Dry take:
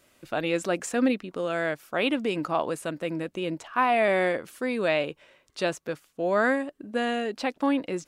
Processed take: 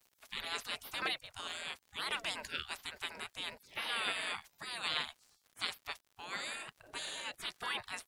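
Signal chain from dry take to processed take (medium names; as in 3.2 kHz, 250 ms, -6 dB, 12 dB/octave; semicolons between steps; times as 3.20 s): spectral gate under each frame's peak -25 dB weak; crackle 84 per s -57 dBFS; trim +5.5 dB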